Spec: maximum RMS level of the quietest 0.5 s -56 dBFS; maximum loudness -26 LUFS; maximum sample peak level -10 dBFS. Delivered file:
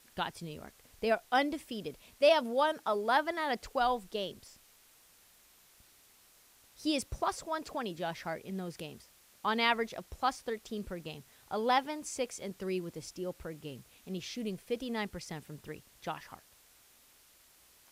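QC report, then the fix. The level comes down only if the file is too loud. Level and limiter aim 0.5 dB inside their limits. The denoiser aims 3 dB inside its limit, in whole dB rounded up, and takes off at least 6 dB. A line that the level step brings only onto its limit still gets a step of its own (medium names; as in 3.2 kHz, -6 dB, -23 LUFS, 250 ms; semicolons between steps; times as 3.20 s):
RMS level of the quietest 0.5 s -63 dBFS: pass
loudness -34.5 LUFS: pass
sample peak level -13.5 dBFS: pass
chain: none needed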